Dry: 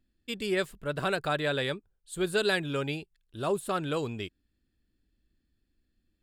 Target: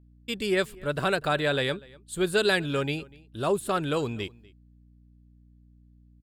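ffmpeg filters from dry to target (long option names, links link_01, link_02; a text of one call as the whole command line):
ffmpeg -i in.wav -filter_complex "[0:a]agate=range=-16dB:threshold=-58dB:ratio=16:detection=peak,aeval=exprs='val(0)+0.00126*(sin(2*PI*60*n/s)+sin(2*PI*2*60*n/s)/2+sin(2*PI*3*60*n/s)/3+sin(2*PI*4*60*n/s)/4+sin(2*PI*5*60*n/s)/5)':channel_layout=same,asplit=2[link_01][link_02];[link_02]adelay=244.9,volume=-23dB,highshelf=frequency=4000:gain=-5.51[link_03];[link_01][link_03]amix=inputs=2:normalize=0,volume=3.5dB" out.wav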